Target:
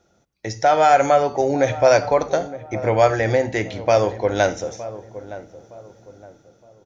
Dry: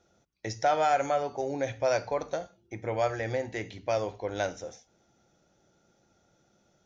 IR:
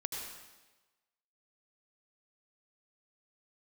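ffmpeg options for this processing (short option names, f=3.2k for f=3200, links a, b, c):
-filter_complex "[0:a]dynaudnorm=f=210:g=7:m=7dB,asplit=2[a][b];[b]adelay=915,lowpass=f=990:p=1,volume=-14dB,asplit=2[c][d];[d]adelay=915,lowpass=f=990:p=1,volume=0.38,asplit=2[e][f];[f]adelay=915,lowpass=f=990:p=1,volume=0.38,asplit=2[g][h];[h]adelay=915,lowpass=f=990:p=1,volume=0.38[i];[a][c][e][g][i]amix=inputs=5:normalize=0,asplit=2[j][k];[1:a]atrim=start_sample=2205,afade=t=out:st=0.15:d=0.01,atrim=end_sample=7056,lowpass=f=3.6k:w=0.5412,lowpass=f=3.6k:w=1.3066[l];[k][l]afir=irnorm=-1:irlink=0,volume=-15.5dB[m];[j][m]amix=inputs=2:normalize=0,volume=4.5dB"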